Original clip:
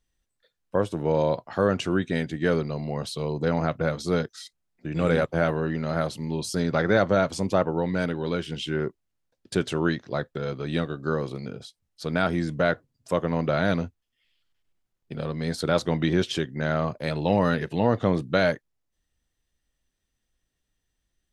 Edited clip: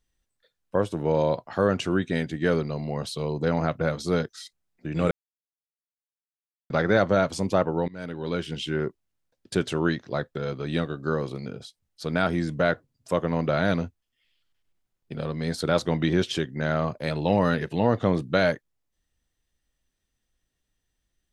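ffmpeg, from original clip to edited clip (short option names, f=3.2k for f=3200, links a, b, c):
-filter_complex "[0:a]asplit=4[a][b][c][d];[a]atrim=end=5.11,asetpts=PTS-STARTPTS,afade=t=out:st=5.106:d=0.004:c=hsin[e];[b]atrim=start=5.11:end=6.7,asetpts=PTS-STARTPTS,volume=0[f];[c]atrim=start=6.7:end=7.88,asetpts=PTS-STARTPTS,afade=t=in:d=0.004:c=hsin,afade=t=out:st=1.176:d=0.004:c=hsin:silence=0.0707946[g];[d]atrim=start=7.88,asetpts=PTS-STARTPTS,afade=t=in:d=0.51:silence=0.0707946[h];[e][f][g][h]concat=n=4:v=0:a=1"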